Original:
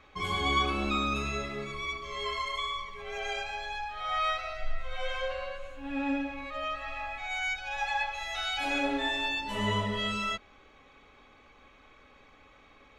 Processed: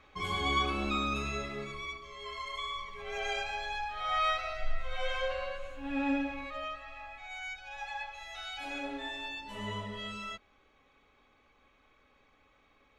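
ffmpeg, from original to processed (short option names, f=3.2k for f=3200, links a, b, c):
-af "volume=8dB,afade=t=out:st=1.63:d=0.55:silence=0.398107,afade=t=in:st=2.18:d=1.03:silence=0.298538,afade=t=out:st=6.32:d=0.53:silence=0.354813"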